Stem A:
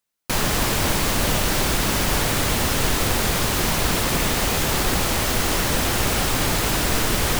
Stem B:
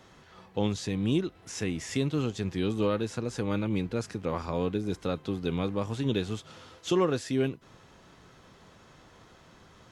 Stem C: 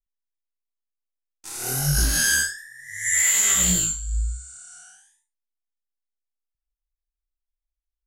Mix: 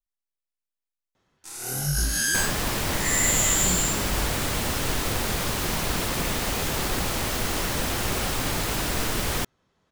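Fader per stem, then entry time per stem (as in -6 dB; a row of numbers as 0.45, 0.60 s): -5.5, -15.5, -4.0 dB; 2.05, 1.15, 0.00 s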